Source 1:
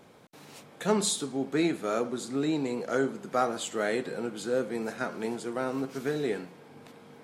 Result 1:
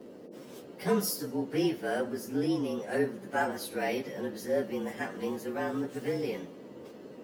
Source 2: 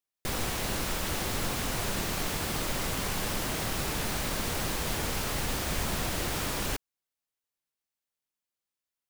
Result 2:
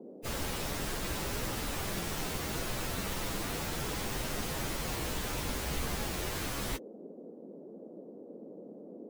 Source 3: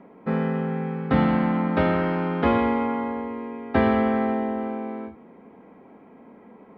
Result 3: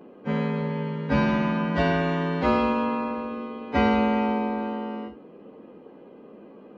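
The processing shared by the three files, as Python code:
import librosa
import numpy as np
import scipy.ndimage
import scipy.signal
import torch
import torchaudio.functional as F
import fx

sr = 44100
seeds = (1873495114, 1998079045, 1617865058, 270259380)

y = fx.partial_stretch(x, sr, pct=111)
y = fx.dmg_noise_band(y, sr, seeds[0], low_hz=190.0, high_hz=540.0, level_db=-48.0)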